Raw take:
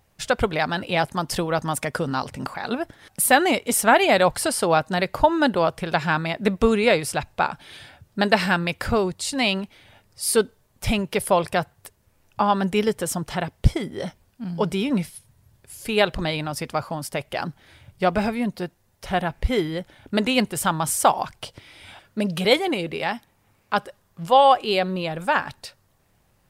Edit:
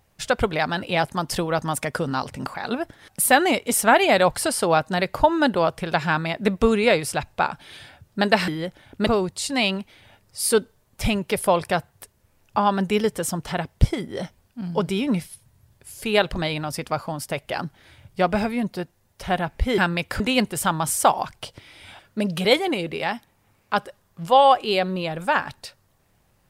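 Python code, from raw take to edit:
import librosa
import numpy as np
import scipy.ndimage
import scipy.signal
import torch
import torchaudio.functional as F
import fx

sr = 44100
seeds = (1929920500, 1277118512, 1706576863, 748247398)

y = fx.edit(x, sr, fx.swap(start_s=8.48, length_s=0.42, other_s=19.61, other_length_s=0.59), tone=tone)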